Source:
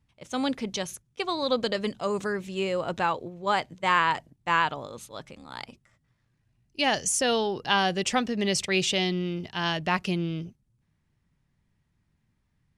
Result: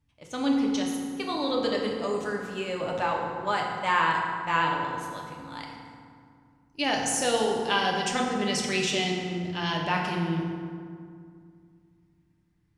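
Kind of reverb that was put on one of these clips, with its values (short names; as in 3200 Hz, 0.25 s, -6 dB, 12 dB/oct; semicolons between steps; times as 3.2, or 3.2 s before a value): FDN reverb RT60 2.2 s, low-frequency decay 1.4×, high-frequency decay 0.55×, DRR -1 dB; gain -4 dB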